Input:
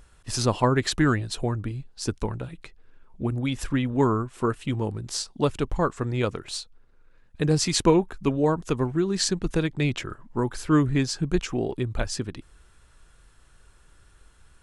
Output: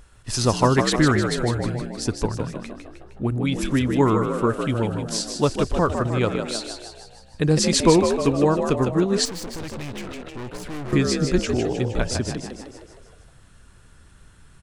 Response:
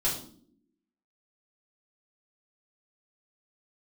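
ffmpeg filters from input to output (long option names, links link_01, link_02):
-filter_complex "[0:a]asplit=8[link_01][link_02][link_03][link_04][link_05][link_06][link_07][link_08];[link_02]adelay=155,afreqshift=59,volume=-6.5dB[link_09];[link_03]adelay=310,afreqshift=118,volume=-11.7dB[link_10];[link_04]adelay=465,afreqshift=177,volume=-16.9dB[link_11];[link_05]adelay=620,afreqshift=236,volume=-22.1dB[link_12];[link_06]adelay=775,afreqshift=295,volume=-27.3dB[link_13];[link_07]adelay=930,afreqshift=354,volume=-32.5dB[link_14];[link_08]adelay=1085,afreqshift=413,volume=-37.7dB[link_15];[link_01][link_09][link_10][link_11][link_12][link_13][link_14][link_15]amix=inputs=8:normalize=0,asettb=1/sr,asplit=3[link_16][link_17][link_18];[link_16]atrim=end=9.254[link_19];[link_17]atrim=start=9.25:end=10.93,asetpts=PTS-STARTPTS,afade=type=in:duration=0.004:curve=qsin,afade=type=out:start_time=1.676:duration=0.004:curve=qsin,aeval=exprs='(tanh(50.1*val(0)+0.75)-tanh(0.75))/50.1':channel_layout=same[link_20];[link_18]atrim=start=10.926[link_21];[link_19][link_20]acrossfade=duration=0.004:curve1=hsin:curve2=qsin[link_22];[link_22][link_21]acrossfade=duration=0.004:curve1=qsin:curve2=hsin,volume=3dB"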